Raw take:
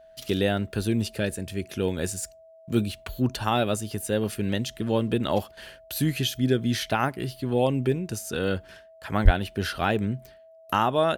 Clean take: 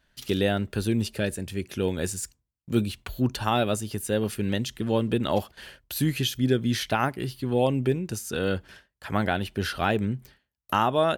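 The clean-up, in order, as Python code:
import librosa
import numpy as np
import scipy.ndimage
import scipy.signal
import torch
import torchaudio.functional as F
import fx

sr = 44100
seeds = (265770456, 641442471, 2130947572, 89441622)

y = fx.notch(x, sr, hz=650.0, q=30.0)
y = fx.fix_deplosive(y, sr, at_s=(9.24,))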